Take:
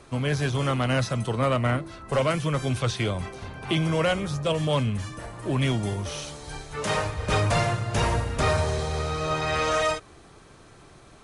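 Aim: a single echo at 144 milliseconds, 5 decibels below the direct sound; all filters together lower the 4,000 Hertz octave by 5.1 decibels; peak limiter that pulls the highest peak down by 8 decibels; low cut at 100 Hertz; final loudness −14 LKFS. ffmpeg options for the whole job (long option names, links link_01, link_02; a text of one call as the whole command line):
ffmpeg -i in.wav -af "highpass=100,equalizer=frequency=4000:width_type=o:gain=-7,alimiter=limit=-20.5dB:level=0:latency=1,aecho=1:1:144:0.562,volume=15dB" out.wav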